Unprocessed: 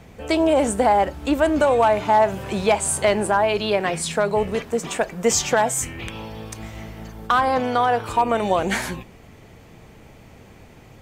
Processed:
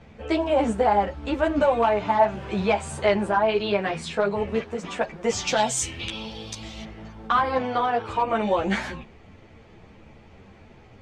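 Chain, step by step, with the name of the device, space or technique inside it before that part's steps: 5.47–6.84 resonant high shelf 2600 Hz +11.5 dB, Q 1.5; string-machine ensemble chorus (ensemble effect; LPF 4300 Hz 12 dB/oct)

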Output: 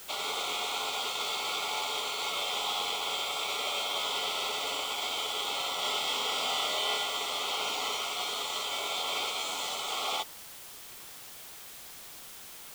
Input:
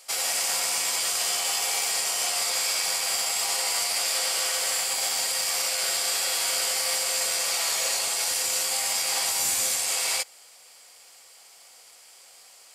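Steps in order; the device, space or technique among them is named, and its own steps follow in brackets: 5.8–7.06 doubler 25 ms -3 dB; HPF 800 Hz 12 dB/oct; split-band scrambled radio (four-band scrambler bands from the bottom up 2143; BPF 380–3100 Hz; white noise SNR 13 dB)

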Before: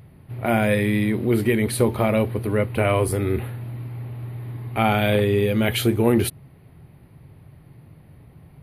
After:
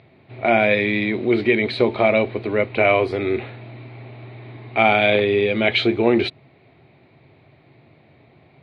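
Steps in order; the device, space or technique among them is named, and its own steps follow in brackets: kitchen radio (speaker cabinet 160–4400 Hz, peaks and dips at 170 Hz -8 dB, 370 Hz +4 dB, 670 Hz +8 dB, 2300 Hz +10 dB, 3900 Hz +10 dB)

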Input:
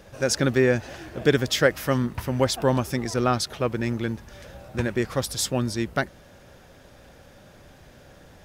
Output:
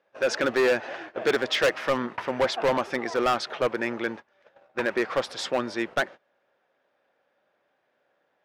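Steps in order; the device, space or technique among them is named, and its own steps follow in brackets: walkie-talkie (BPF 490–2500 Hz; hard clip -24 dBFS, distortion -6 dB; gate -44 dBFS, range -23 dB); gain +6.5 dB

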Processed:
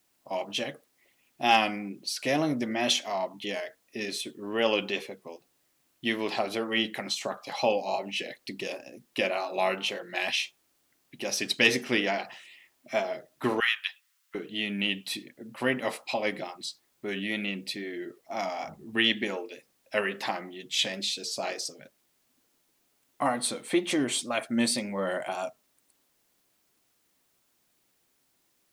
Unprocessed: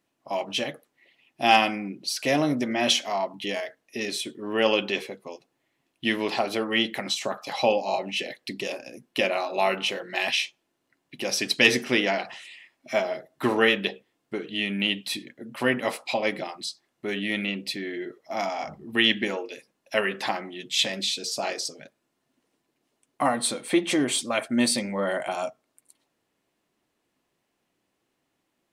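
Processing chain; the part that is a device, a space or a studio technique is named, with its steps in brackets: plain cassette with noise reduction switched in (mismatched tape noise reduction decoder only; wow and flutter; white noise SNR 40 dB); 13.6–14.35 steep high-pass 1100 Hz 36 dB/oct; gain -3.5 dB

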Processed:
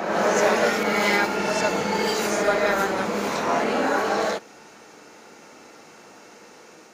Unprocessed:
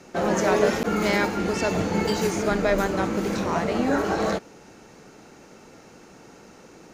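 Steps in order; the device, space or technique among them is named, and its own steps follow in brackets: ghost voice (reverse; reverb RT60 2.1 s, pre-delay 3 ms, DRR -1.5 dB; reverse; HPF 690 Hz 6 dB/oct); gain +1.5 dB

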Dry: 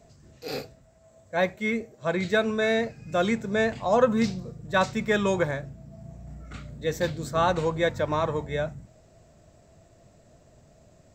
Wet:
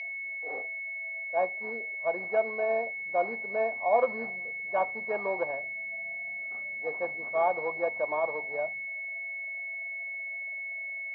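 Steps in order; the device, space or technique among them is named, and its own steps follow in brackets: toy sound module (decimation joined by straight lines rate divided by 4×; pulse-width modulation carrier 2200 Hz; speaker cabinet 690–4600 Hz, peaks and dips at 1400 Hz -8 dB, 2100 Hz -4 dB, 3700 Hz -7 dB); bell 700 Hz +6 dB 0.38 oct

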